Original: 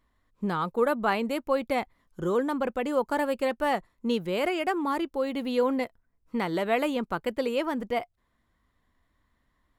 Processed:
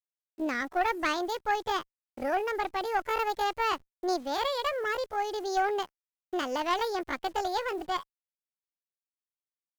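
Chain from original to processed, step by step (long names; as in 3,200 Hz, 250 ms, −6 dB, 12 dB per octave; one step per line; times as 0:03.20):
hold until the input has moved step −47.5 dBFS
pitch shifter +7.5 semitones
tube saturation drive 17 dB, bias 0.6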